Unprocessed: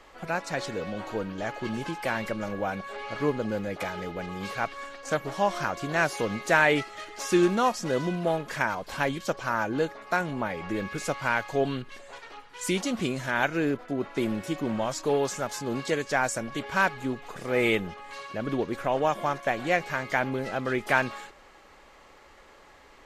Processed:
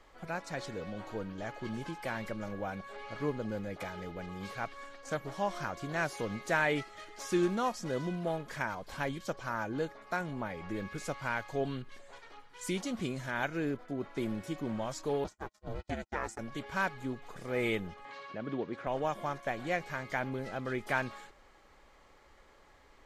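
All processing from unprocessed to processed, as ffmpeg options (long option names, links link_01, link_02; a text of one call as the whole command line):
ffmpeg -i in.wav -filter_complex "[0:a]asettb=1/sr,asplit=3[link_01][link_02][link_03];[link_01]atrim=end=15.244[link_04];[link_02]atrim=start=15.24:end=16.39,asetpts=PTS-STARTPTS,afade=type=in:duration=0.004:curve=qsin,afade=type=out:start_time=1.146:duration=0.004:curve=qsin,agate=range=-39dB:threshold=-33dB:ratio=16:release=100:detection=peak,highshelf=frequency=6900:gain=-7,aeval=exprs='val(0)*sin(2*PI*220*n/s)':channel_layout=same[link_05];[link_03]atrim=start=16.386[link_06];[link_04][link_05]acrossfade=duration=0.004:curve1=hsin:curve2=qsin[link_07];[link_07][link_06]acrossfade=duration=0.004:curve1=qsin:curve2=hsin,asettb=1/sr,asplit=3[link_08][link_09][link_10];[link_08]atrim=end=18.054[link_11];[link_09]atrim=start=18.05:end=18.87,asetpts=PTS-STARTPTS,afade=type=in:duration=0.004:curve=qsin,afade=type=out:start_time=0.816:duration=0.004:curve=qsin,highpass=140,lowpass=4100,acompressor=mode=upward:threshold=-32dB:ratio=2.5:attack=3.2:release=140:knee=2.83:detection=peak[link_12];[link_10]atrim=start=18.866[link_13];[link_11][link_12]acrossfade=duration=0.004:curve1=hsin:curve2=qsin[link_14];[link_14][link_13]acrossfade=duration=0.004:curve1=qsin:curve2=hsin,lowshelf=frequency=140:gain=7,bandreject=frequency=2700:width=18,volume=-8.5dB" out.wav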